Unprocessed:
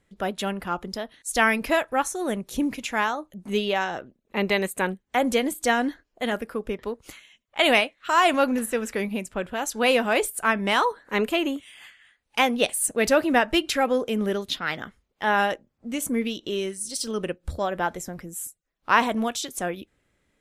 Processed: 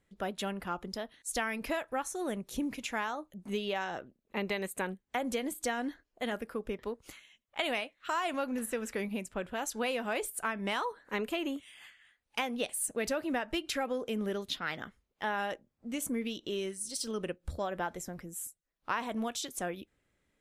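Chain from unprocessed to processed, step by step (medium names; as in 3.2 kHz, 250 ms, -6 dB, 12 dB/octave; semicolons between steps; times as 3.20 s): compression, threshold -23 dBFS, peak gain reduction 10 dB; trim -6.5 dB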